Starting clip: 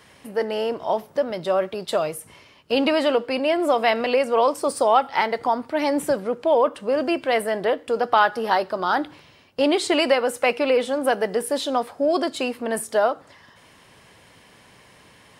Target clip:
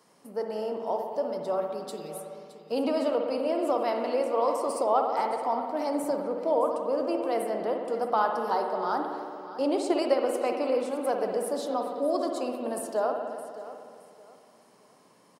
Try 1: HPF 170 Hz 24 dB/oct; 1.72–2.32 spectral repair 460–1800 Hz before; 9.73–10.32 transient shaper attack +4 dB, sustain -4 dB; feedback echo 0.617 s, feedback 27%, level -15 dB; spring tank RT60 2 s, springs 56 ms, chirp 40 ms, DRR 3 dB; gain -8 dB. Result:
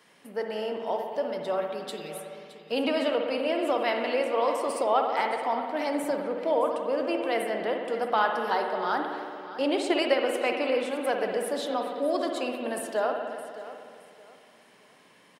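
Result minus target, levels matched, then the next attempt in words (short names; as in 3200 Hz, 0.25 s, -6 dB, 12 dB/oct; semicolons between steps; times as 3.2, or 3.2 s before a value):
2000 Hz band +8.5 dB
HPF 170 Hz 24 dB/oct; band shelf 2400 Hz -10.5 dB 1.5 oct; 1.72–2.32 spectral repair 460–1800 Hz before; 9.73–10.32 transient shaper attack +4 dB, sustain -4 dB; feedback echo 0.617 s, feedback 27%, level -15 dB; spring tank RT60 2 s, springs 56 ms, chirp 40 ms, DRR 3 dB; gain -8 dB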